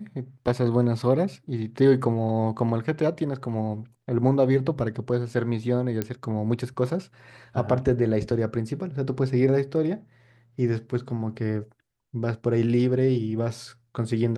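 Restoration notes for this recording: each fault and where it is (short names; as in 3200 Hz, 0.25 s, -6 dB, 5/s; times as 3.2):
6.02 pop -13 dBFS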